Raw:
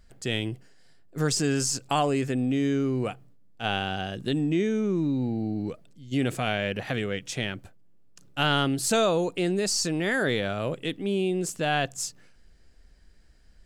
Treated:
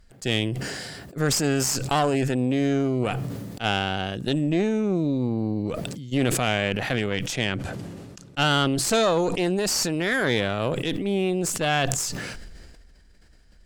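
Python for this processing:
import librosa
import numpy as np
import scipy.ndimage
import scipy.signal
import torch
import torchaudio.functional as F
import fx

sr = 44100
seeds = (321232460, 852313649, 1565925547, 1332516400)

y = fx.lowpass(x, sr, hz=9300.0, slope=12, at=(7.32, 9.39))
y = fx.tube_stage(y, sr, drive_db=19.0, bias=0.8)
y = fx.sustainer(y, sr, db_per_s=27.0)
y = y * 10.0 ** (6.0 / 20.0)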